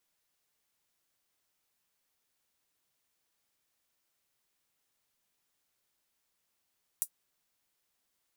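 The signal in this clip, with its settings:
closed synth hi-hat, high-pass 8,800 Hz, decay 0.08 s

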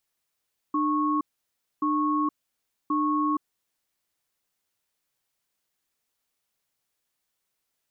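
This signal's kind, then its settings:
tone pair in a cadence 300 Hz, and 1,100 Hz, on 0.47 s, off 0.61 s, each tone −24.5 dBFS 3.03 s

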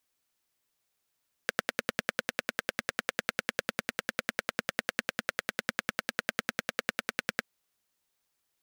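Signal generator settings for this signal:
pulse-train model of a single-cylinder engine, steady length 5.98 s, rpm 1,200, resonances 230/510/1,500 Hz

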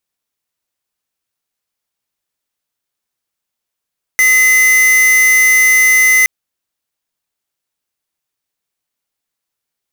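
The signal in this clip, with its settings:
tone square 2,040 Hz −9 dBFS 2.07 s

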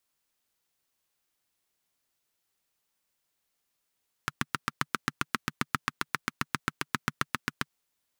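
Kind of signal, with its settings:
pulse-train model of a single-cylinder engine, steady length 3.41 s, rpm 900, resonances 150/230/1,300 Hz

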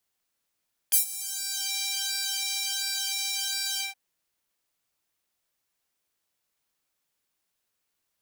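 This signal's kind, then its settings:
subtractive patch with pulse-width modulation G5, sub −26 dB, noise −21.5 dB, filter highpass, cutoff 1,500 Hz, Q 1.1, filter envelope 3 octaves, filter decay 0.80 s, filter sustain 50%, attack 18 ms, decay 0.11 s, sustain −20 dB, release 0.15 s, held 2.87 s, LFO 1.4 Hz, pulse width 39%, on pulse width 15%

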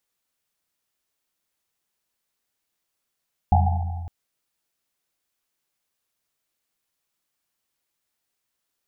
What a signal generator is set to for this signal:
drum after Risset length 0.56 s, pitch 85 Hz, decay 2.13 s, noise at 780 Hz, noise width 140 Hz, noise 30%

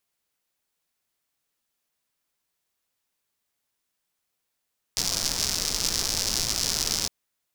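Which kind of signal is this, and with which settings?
rain-like ticks over hiss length 2.11 s, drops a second 170, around 5,300 Hz, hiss −7 dB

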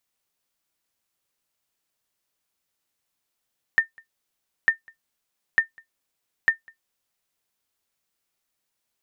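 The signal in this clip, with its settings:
ping with an echo 1,810 Hz, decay 0.12 s, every 0.90 s, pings 4, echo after 0.20 s, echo −29.5 dB −8.5 dBFS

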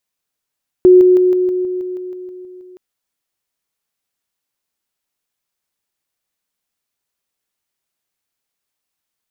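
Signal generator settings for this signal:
level staircase 365 Hz −3 dBFS, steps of −3 dB, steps 12, 0.16 s 0.00 s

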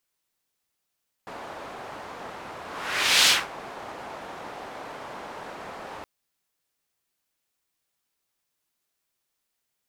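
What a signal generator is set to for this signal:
pass-by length 4.77 s, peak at 0:02.01, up 0.68 s, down 0.23 s, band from 830 Hz, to 3,900 Hz, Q 1.1, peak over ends 21.5 dB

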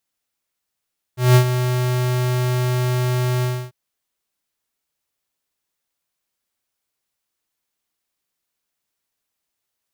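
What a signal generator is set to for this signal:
note with an ADSR envelope square 125 Hz, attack 185 ms, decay 83 ms, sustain −10 dB, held 2.26 s, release 283 ms −9.5 dBFS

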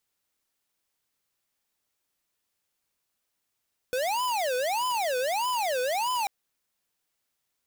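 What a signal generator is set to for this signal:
siren wail 497–1,010 Hz 1.6 per second square −27.5 dBFS 2.34 s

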